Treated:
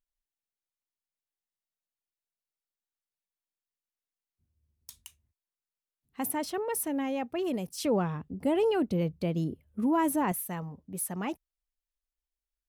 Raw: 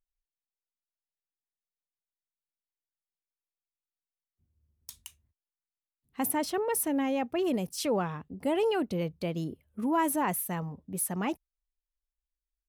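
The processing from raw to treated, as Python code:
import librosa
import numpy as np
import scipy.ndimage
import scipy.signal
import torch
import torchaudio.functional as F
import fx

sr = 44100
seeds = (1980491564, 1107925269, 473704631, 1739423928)

y = fx.low_shelf(x, sr, hz=440.0, db=7.5, at=(7.83, 10.32))
y = F.gain(torch.from_numpy(y), -2.5).numpy()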